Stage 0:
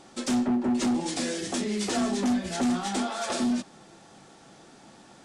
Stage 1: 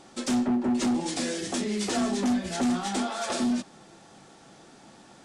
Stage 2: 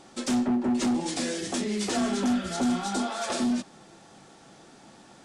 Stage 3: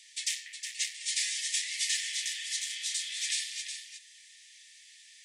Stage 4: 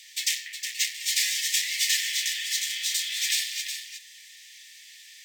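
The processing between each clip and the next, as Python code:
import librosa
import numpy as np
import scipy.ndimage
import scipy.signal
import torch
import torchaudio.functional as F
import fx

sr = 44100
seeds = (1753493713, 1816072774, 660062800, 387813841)

y1 = x
y2 = fx.spec_repair(y1, sr, seeds[0], start_s=2.05, length_s=0.95, low_hz=1200.0, high_hz=3500.0, source='both')
y3 = scipy.signal.sosfilt(scipy.signal.cheby1(8, 1.0, 1800.0, 'highpass', fs=sr, output='sos'), y2)
y3 = y3 + 10.0 ** (-8.0 / 20.0) * np.pad(y3, (int(364 * sr / 1000.0), 0))[:len(y3)]
y3 = y3 * 10.0 ** (4.0 / 20.0)
y4 = np.interp(np.arange(len(y3)), np.arange(len(y3))[::2], y3[::2])
y4 = y4 * 10.0 ** (7.5 / 20.0)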